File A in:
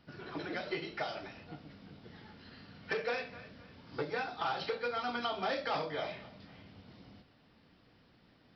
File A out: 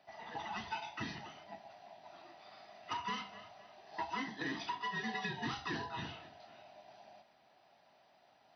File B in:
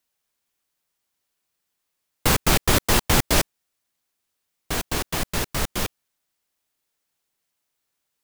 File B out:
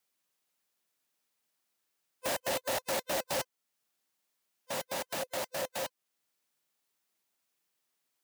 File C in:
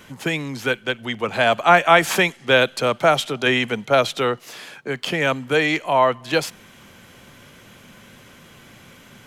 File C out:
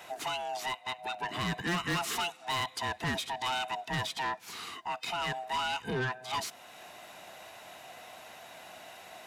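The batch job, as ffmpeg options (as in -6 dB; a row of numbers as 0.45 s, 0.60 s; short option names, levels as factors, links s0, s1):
-af "afftfilt=real='real(if(lt(b,1008),b+24*(1-2*mod(floor(b/24),2)),b),0)':imag='imag(if(lt(b,1008),b+24*(1-2*mod(floor(b/24),2)),b),0)':win_size=2048:overlap=0.75,highpass=140,asoftclip=type=tanh:threshold=0.119,alimiter=level_in=1.19:limit=0.0631:level=0:latency=1:release=414,volume=0.841,volume=0.75"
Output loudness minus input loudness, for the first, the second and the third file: -4.0 LU, -12.5 LU, -14.5 LU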